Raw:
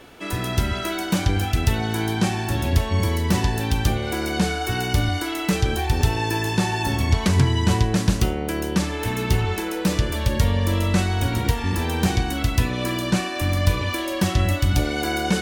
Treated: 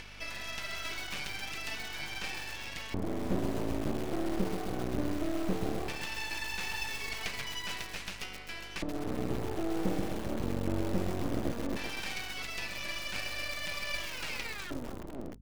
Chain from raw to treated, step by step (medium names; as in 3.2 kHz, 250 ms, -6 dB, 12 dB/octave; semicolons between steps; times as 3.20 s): tape stop on the ending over 1.37 s; upward compressor, threshold -28 dBFS; LFO band-pass square 0.17 Hz 300–2400 Hz; half-wave rectifier; hum 50 Hz, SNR 19 dB; bit-crushed delay 130 ms, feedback 80%, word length 6-bit, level -7 dB; trim +1 dB